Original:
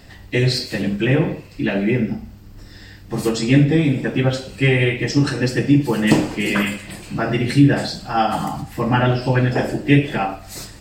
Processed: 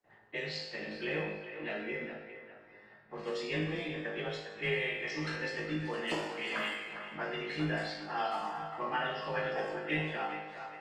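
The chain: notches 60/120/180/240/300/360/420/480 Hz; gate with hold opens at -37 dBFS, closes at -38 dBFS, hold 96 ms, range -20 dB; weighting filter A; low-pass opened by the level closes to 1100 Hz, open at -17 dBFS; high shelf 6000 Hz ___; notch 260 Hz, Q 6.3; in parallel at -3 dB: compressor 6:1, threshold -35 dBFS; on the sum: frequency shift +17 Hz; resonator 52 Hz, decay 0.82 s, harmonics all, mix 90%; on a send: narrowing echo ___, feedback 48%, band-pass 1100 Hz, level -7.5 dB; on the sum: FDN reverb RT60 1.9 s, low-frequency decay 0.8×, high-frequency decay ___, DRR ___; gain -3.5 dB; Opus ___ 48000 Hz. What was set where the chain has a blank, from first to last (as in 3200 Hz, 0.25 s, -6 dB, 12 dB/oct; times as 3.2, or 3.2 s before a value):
-10 dB, 0.406 s, 0.65×, 17 dB, 20 kbps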